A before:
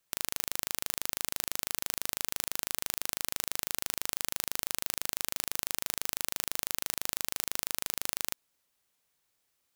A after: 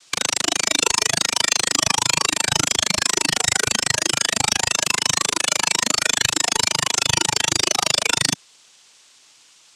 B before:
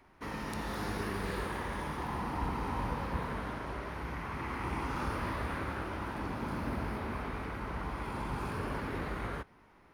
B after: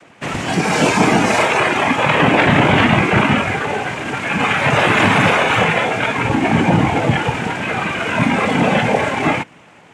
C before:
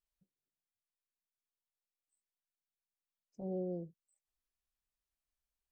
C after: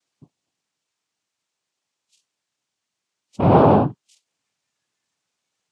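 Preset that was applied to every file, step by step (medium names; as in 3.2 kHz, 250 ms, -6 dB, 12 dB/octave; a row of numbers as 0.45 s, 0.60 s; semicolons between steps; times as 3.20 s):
noise-vocoded speech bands 4; spectral noise reduction 8 dB; Chebyshev shaper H 5 -21 dB, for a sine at -21 dBFS; peak normalisation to -3 dBFS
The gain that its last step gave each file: +22.5 dB, +22.5 dB, +23.0 dB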